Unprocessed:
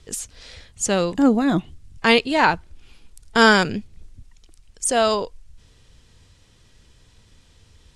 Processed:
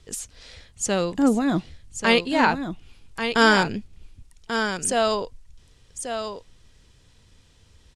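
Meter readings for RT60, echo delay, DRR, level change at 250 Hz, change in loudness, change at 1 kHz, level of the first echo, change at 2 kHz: no reverb audible, 1,138 ms, no reverb audible, −2.5 dB, −3.5 dB, −2.5 dB, −8.0 dB, −2.5 dB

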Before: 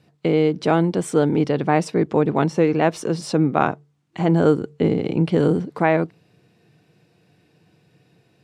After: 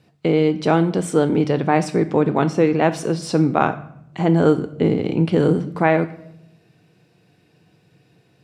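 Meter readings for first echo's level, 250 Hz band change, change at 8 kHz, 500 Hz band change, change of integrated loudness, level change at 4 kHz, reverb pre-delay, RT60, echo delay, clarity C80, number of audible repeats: no echo audible, +1.5 dB, +1.5 dB, +1.0 dB, +1.0 dB, +1.5 dB, 12 ms, 0.80 s, no echo audible, 17.5 dB, no echo audible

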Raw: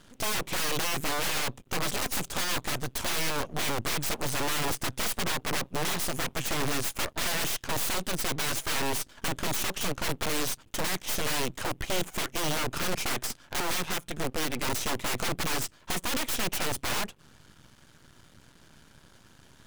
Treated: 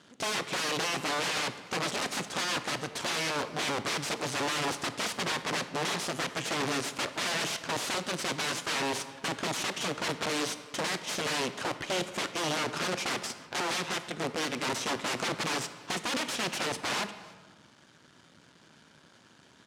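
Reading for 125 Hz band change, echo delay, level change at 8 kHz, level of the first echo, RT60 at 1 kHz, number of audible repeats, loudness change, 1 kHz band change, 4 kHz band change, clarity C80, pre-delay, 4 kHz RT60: −4.5 dB, 299 ms, −3.5 dB, −23.5 dB, 1.4 s, 1, −1.5 dB, +0.5 dB, 0.0 dB, 13.0 dB, 24 ms, 0.85 s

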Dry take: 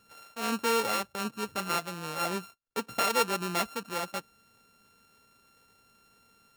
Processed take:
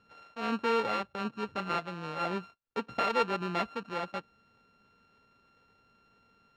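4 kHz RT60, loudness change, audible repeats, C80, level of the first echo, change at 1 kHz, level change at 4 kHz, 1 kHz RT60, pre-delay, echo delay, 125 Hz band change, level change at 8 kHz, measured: no reverb audible, −2.0 dB, no echo audible, no reverb audible, no echo audible, −1.0 dB, −6.5 dB, no reverb audible, no reverb audible, no echo audible, 0.0 dB, −19.5 dB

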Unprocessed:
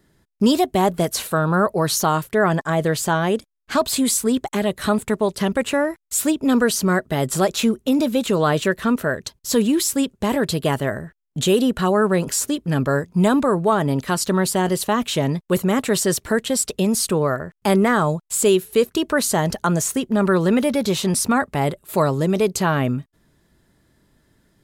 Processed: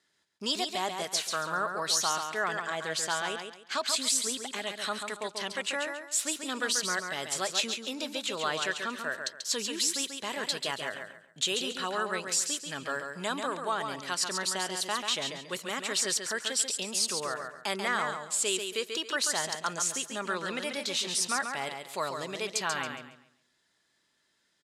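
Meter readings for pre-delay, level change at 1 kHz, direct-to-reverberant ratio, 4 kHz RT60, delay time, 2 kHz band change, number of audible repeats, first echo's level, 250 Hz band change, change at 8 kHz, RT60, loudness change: no reverb audible, −10.5 dB, no reverb audible, no reverb audible, 138 ms, −6.0 dB, 3, −6.0 dB, −22.0 dB, −5.5 dB, no reverb audible, −10.5 dB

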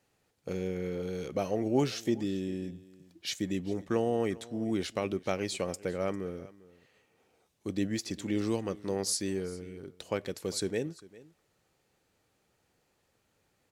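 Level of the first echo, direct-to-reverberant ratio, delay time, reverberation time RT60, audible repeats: −20.5 dB, no reverb audible, 399 ms, no reverb audible, 1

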